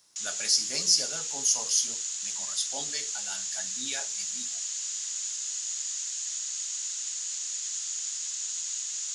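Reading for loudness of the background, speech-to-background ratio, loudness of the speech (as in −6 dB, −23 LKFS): −31.0 LKFS, 3.5 dB, −27.5 LKFS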